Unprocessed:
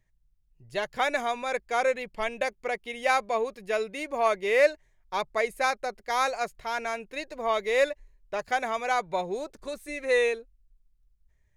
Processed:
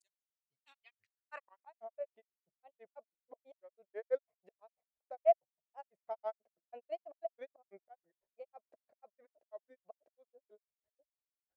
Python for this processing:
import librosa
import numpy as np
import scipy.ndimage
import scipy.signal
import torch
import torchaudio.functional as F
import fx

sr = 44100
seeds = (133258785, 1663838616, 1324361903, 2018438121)

y = scipy.signal.sosfilt(scipy.signal.butter(2, 55.0, 'highpass', fs=sr, output='sos'), x)
y = fx.auto_swell(y, sr, attack_ms=654.0)
y = fx.granulator(y, sr, seeds[0], grain_ms=92.0, per_s=6.1, spray_ms=816.0, spread_st=3)
y = fx.filter_sweep_bandpass(y, sr, from_hz=8000.0, to_hz=640.0, start_s=0.09, end_s=1.82, q=5.5)
y = F.gain(torch.from_numpy(y), 2.5).numpy()